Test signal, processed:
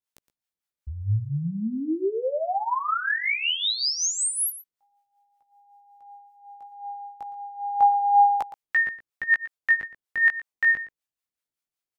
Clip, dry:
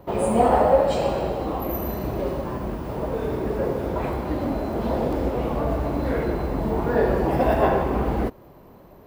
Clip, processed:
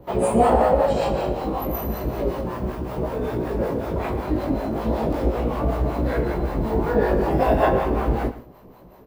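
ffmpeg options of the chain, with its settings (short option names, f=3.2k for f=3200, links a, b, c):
-filter_complex "[0:a]flanger=delay=16:depth=3.2:speed=0.34,acrossover=split=580[a][b];[a]aeval=exprs='val(0)*(1-0.7/2+0.7/2*cos(2*PI*5.3*n/s))':c=same[c];[b]aeval=exprs='val(0)*(1-0.7/2-0.7/2*cos(2*PI*5.3*n/s))':c=same[d];[c][d]amix=inputs=2:normalize=0,aecho=1:1:116:0.178,volume=7dB"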